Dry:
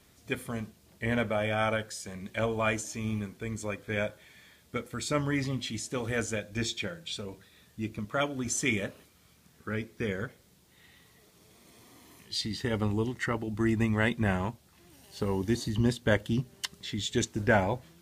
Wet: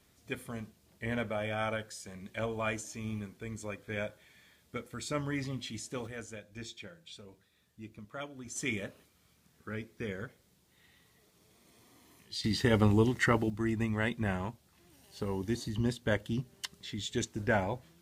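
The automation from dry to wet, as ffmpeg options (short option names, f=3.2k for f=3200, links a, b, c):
-af "asetnsamples=n=441:p=0,asendcmd='6.07 volume volume -12.5dB;8.56 volume volume -6dB;12.44 volume volume 4dB;13.5 volume volume -5dB',volume=-5.5dB"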